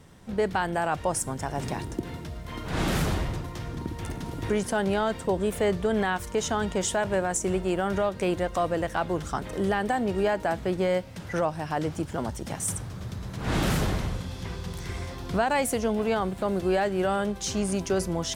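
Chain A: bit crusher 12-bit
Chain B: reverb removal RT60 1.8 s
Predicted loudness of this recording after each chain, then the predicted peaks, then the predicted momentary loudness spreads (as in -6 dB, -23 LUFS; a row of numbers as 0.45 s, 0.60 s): -28.5 LUFS, -29.5 LUFS; -12.5 dBFS, -13.0 dBFS; 10 LU, 12 LU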